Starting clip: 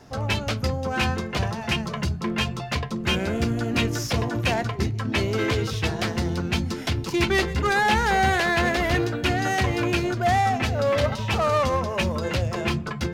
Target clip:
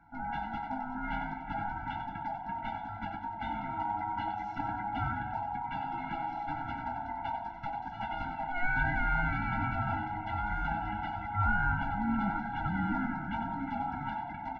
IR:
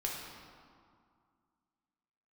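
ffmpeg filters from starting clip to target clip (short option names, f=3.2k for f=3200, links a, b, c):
-filter_complex "[0:a]lowpass=1.2k,equalizer=f=84:w=5.9:g=-12.5,asetrate=39690,aresample=44100,aeval=exprs='val(0)*sin(2*PI*730*n/s)':c=same,asplit=5[a][b][c][d][e];[b]adelay=93,afreqshift=120,volume=-7.5dB[f];[c]adelay=186,afreqshift=240,volume=-16.9dB[g];[d]adelay=279,afreqshift=360,volume=-26.2dB[h];[e]adelay=372,afreqshift=480,volume=-35.6dB[i];[a][f][g][h][i]amix=inputs=5:normalize=0,asplit=2[j][k];[1:a]atrim=start_sample=2205,asetrate=31311,aresample=44100,lowshelf=f=140:g=6.5[l];[k][l]afir=irnorm=-1:irlink=0,volume=-12dB[m];[j][m]amix=inputs=2:normalize=0,afftfilt=real='re*eq(mod(floor(b*sr/1024/330),2),0)':imag='im*eq(mod(floor(b*sr/1024/330),2),0)':win_size=1024:overlap=0.75,volume=-6dB"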